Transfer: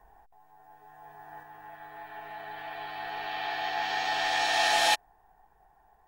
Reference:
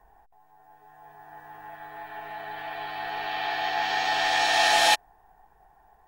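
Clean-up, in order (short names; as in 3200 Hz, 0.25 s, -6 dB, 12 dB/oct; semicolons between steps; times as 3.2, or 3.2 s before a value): gain 0 dB, from 1.43 s +4 dB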